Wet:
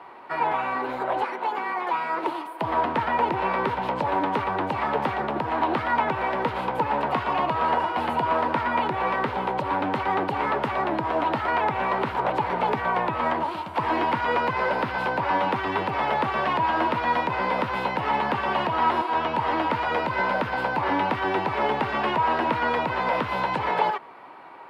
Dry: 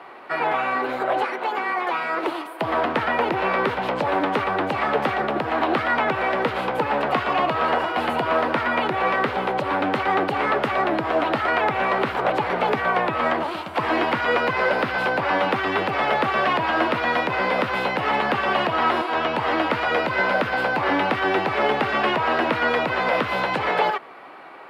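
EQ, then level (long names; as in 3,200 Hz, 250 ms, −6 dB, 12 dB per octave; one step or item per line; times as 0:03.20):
low-shelf EQ 200 Hz +8 dB
parametric band 940 Hz +11 dB 0.21 octaves
−6.0 dB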